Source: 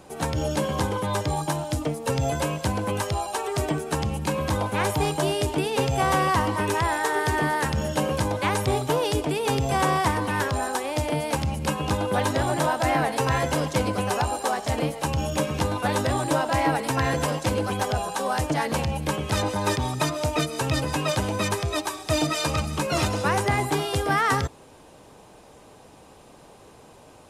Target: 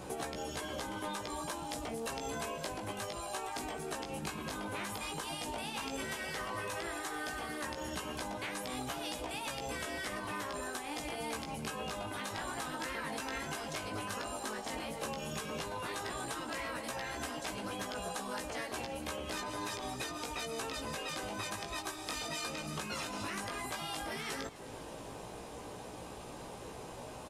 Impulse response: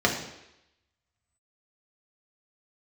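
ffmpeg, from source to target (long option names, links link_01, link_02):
-filter_complex "[0:a]afftfilt=real='re*lt(hypot(re,im),0.224)':imag='im*lt(hypot(re,im),0.224)':win_size=1024:overlap=0.75,acompressor=threshold=-40dB:ratio=8,flanger=delay=16:depth=3:speed=0.11,asplit=5[link_01][link_02][link_03][link_04][link_05];[link_02]adelay=259,afreqshift=-35,volume=-18dB[link_06];[link_03]adelay=518,afreqshift=-70,volume=-23.8dB[link_07];[link_04]adelay=777,afreqshift=-105,volume=-29.7dB[link_08];[link_05]adelay=1036,afreqshift=-140,volume=-35.5dB[link_09];[link_01][link_06][link_07][link_08][link_09]amix=inputs=5:normalize=0,volume=6dB"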